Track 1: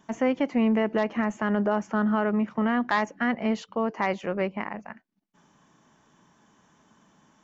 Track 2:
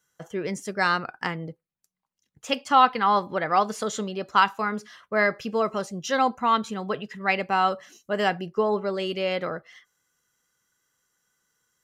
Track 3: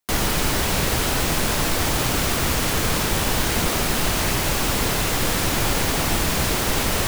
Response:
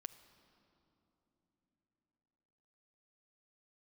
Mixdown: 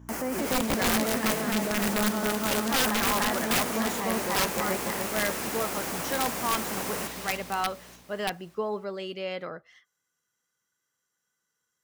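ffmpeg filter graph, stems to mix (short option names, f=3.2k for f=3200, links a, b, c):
-filter_complex "[0:a]aeval=exprs='val(0)+0.00891*(sin(2*PI*60*n/s)+sin(2*PI*2*60*n/s)/2+sin(2*PI*3*60*n/s)/3+sin(2*PI*4*60*n/s)/4+sin(2*PI*5*60*n/s)/5)':c=same,volume=-1.5dB,asplit=2[a][b];[b]volume=-3dB[c];[1:a]volume=-7dB[d];[2:a]highpass=220,volume=-9.5dB,asplit=2[e][f];[f]volume=-7.5dB[g];[a][e]amix=inputs=2:normalize=0,equalizer=f=3.7k:t=o:w=0.7:g=-14.5,alimiter=limit=-21.5dB:level=0:latency=1:release=16,volume=0dB[h];[c][g]amix=inputs=2:normalize=0,aecho=0:1:295|590|885|1180|1475|1770|2065|2360:1|0.52|0.27|0.141|0.0731|0.038|0.0198|0.0103[i];[d][h][i]amix=inputs=3:normalize=0,highpass=f=97:p=1,aeval=exprs='(mod(7.94*val(0)+1,2)-1)/7.94':c=same"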